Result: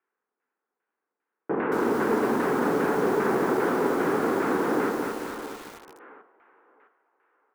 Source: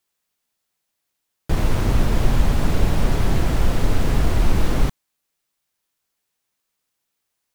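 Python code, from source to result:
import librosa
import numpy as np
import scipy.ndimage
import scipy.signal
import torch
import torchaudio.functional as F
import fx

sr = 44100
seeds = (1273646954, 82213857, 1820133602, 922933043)

y = fx.cabinet(x, sr, low_hz=250.0, low_slope=24, high_hz=2600.0, hz=(430.0, 630.0, 1500.0), db=(6, -8, 5))
y = fx.doubler(y, sr, ms=46.0, db=-13.5)
y = fx.echo_thinned(y, sr, ms=659, feedback_pct=36, hz=450.0, wet_db=-9)
y = fx.filter_lfo_lowpass(y, sr, shape='saw_down', hz=2.5, low_hz=830.0, high_hz=1700.0, q=1.0)
y = fx.echo_crushed(y, sr, ms=224, feedback_pct=55, bits=7, wet_db=-3)
y = F.gain(torch.from_numpy(y), 1.5).numpy()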